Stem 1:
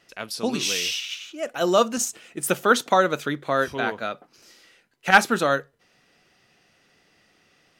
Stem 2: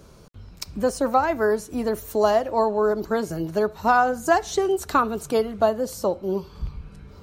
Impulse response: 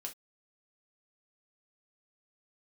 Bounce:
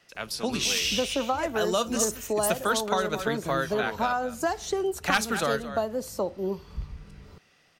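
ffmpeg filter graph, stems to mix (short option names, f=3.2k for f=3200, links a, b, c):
-filter_complex "[0:a]equalizer=f=320:w=1.5:g=-4.5,volume=-1dB,asplit=2[a][b];[b]volume=-15.5dB[c];[1:a]adelay=150,volume=-4dB[d];[c]aecho=0:1:219:1[e];[a][d][e]amix=inputs=3:normalize=0,acrossover=split=170|3000[f][g][h];[g]acompressor=threshold=-23dB:ratio=6[i];[f][i][h]amix=inputs=3:normalize=0"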